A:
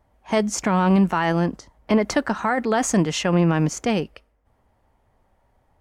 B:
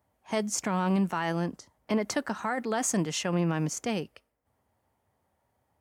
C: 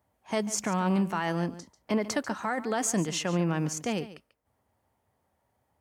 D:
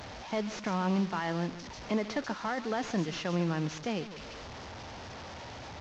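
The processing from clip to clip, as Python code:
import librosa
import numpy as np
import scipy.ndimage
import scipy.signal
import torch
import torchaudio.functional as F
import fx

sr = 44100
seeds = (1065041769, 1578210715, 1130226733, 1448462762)

y1 = scipy.signal.sosfilt(scipy.signal.butter(4, 74.0, 'highpass', fs=sr, output='sos'), x)
y1 = fx.high_shelf(y1, sr, hz=6800.0, db=11.5)
y1 = y1 * librosa.db_to_amplitude(-9.0)
y2 = y1 + 10.0 ** (-15.5 / 20.0) * np.pad(y1, (int(142 * sr / 1000.0), 0))[:len(y1)]
y3 = fx.delta_mod(y2, sr, bps=32000, step_db=-35.0)
y3 = y3 * librosa.db_to_amplitude(-3.0)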